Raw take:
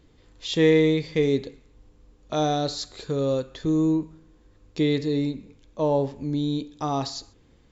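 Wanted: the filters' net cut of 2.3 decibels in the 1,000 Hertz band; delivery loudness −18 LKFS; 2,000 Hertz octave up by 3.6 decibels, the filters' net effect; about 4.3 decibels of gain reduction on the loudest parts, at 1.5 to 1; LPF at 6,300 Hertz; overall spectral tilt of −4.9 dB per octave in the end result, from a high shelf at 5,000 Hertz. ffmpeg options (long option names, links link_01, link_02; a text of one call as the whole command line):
ffmpeg -i in.wav -af "lowpass=6300,equalizer=frequency=1000:width_type=o:gain=-4.5,equalizer=frequency=2000:width_type=o:gain=4,highshelf=frequency=5000:gain=5.5,acompressor=threshold=-26dB:ratio=1.5,volume=9.5dB" out.wav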